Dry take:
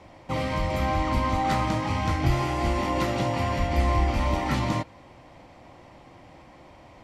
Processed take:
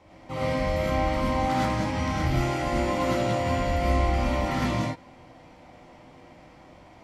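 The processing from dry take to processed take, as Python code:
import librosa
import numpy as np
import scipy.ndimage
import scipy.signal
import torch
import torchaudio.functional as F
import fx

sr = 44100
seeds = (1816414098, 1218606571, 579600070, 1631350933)

y = fx.rev_gated(x, sr, seeds[0], gate_ms=140, shape='rising', drr_db=-5.5)
y = F.gain(torch.from_numpy(y), -7.0).numpy()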